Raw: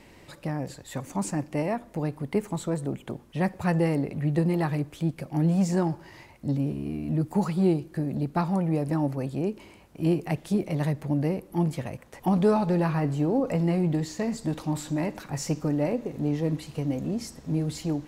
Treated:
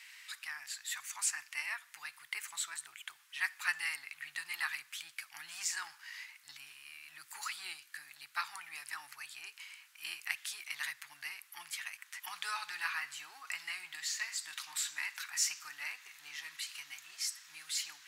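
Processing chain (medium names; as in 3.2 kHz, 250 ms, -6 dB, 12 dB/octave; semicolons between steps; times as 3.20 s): inverse Chebyshev high-pass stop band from 580 Hz, stop band 50 dB; trim +4.5 dB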